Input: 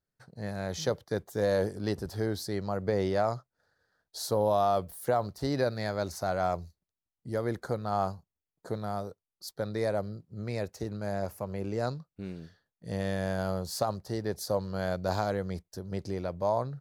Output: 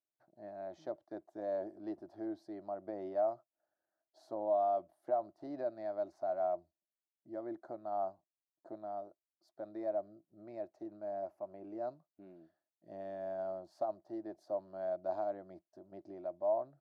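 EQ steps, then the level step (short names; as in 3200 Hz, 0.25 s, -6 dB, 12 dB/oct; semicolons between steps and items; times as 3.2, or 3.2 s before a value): double band-pass 460 Hz, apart 0.93 oct; low shelf 440 Hz -9 dB; +2.0 dB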